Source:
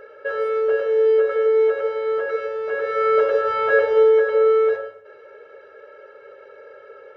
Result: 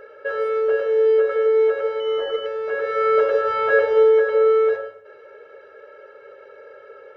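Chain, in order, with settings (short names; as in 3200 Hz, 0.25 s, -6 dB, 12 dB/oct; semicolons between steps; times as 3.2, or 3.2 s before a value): 2–2.46 pulse-width modulation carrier 3000 Hz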